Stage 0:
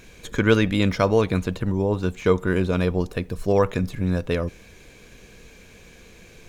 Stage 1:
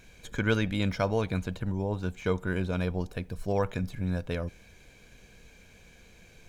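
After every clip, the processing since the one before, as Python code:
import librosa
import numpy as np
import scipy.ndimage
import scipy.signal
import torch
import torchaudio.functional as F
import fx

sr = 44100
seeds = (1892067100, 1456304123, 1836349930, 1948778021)

y = x + 0.31 * np.pad(x, (int(1.3 * sr / 1000.0), 0))[:len(x)]
y = y * 10.0 ** (-8.0 / 20.0)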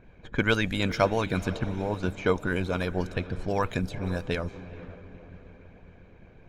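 y = fx.echo_diffused(x, sr, ms=481, feedback_pct=48, wet_db=-13)
y = fx.env_lowpass(y, sr, base_hz=1200.0, full_db=-25.5)
y = fx.hpss(y, sr, part='harmonic', gain_db=-10)
y = y * 10.0 ** (7.0 / 20.0)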